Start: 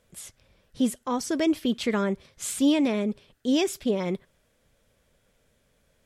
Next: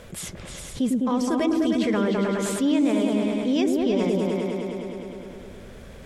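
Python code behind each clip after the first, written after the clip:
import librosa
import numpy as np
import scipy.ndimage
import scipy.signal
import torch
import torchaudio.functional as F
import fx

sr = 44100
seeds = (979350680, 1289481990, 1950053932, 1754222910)

y = fx.high_shelf(x, sr, hz=4900.0, db=-8.5)
y = fx.echo_opening(y, sr, ms=103, hz=400, octaves=2, feedback_pct=70, wet_db=0)
y = fx.env_flatten(y, sr, amount_pct=50)
y = F.gain(torch.from_numpy(y), -3.0).numpy()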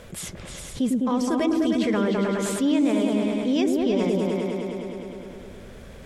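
y = x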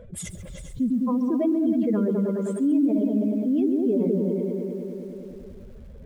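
y = fx.spec_expand(x, sr, power=2.1)
y = fx.echo_crushed(y, sr, ms=136, feedback_pct=35, bits=8, wet_db=-14)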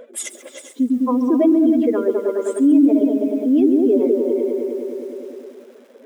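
y = fx.brickwall_highpass(x, sr, low_hz=240.0)
y = fx.notch(y, sr, hz=4400.0, q=15.0)
y = F.gain(torch.from_numpy(y), 8.5).numpy()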